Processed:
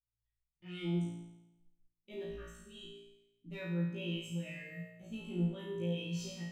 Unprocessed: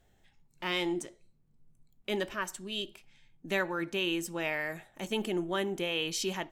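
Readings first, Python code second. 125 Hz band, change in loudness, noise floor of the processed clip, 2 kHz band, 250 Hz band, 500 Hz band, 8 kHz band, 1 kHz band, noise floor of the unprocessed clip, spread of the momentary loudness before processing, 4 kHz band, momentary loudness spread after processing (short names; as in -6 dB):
+6.5 dB, -6.0 dB, under -85 dBFS, -14.0 dB, -2.5 dB, -9.5 dB, -13.0 dB, -19.5 dB, -68 dBFS, 8 LU, -12.5 dB, 15 LU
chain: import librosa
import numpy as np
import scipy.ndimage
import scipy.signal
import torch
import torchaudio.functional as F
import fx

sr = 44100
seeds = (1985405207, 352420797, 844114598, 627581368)

y = fx.noise_reduce_blind(x, sr, reduce_db=15)
y = fx.tone_stack(y, sr, knobs='10-0-1')
y = fx.clip_asym(y, sr, top_db=-56.0, bottom_db=-43.5)
y = fx.room_flutter(y, sr, wall_m=3.0, rt60_s=1.4)
y = fx.rev_fdn(y, sr, rt60_s=0.58, lf_ratio=1.1, hf_ratio=0.35, size_ms=56.0, drr_db=4.0)
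y = fx.spectral_expand(y, sr, expansion=1.5)
y = y * 10.0 ** (10.0 / 20.0)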